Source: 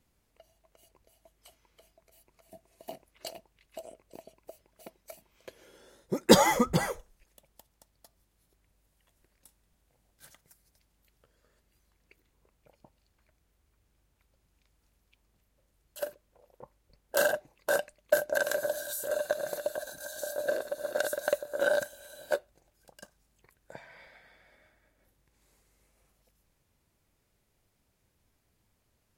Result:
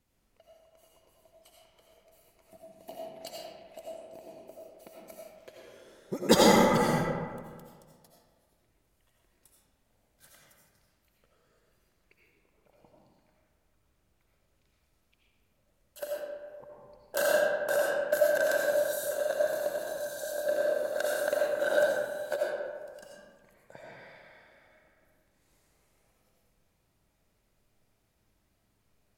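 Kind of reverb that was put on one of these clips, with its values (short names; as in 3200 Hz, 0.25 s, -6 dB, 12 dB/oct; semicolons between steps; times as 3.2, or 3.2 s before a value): digital reverb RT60 1.7 s, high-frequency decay 0.5×, pre-delay 45 ms, DRR -4 dB; gain -4 dB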